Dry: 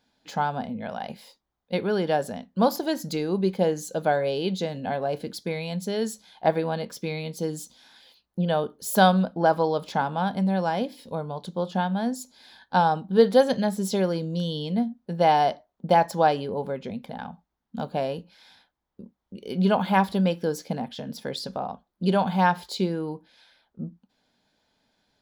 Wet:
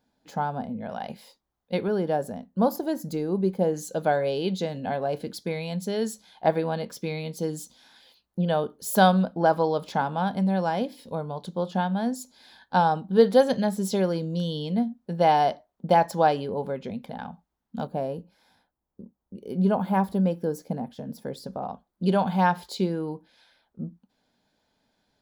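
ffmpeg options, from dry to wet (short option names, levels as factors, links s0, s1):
-af "asetnsamples=n=441:p=0,asendcmd='0.9 equalizer g -2.5;1.88 equalizer g -11.5;3.74 equalizer g -2;17.87 equalizer g -14;21.63 equalizer g -3.5',equalizer=f=3300:t=o:w=2.5:g=-9.5"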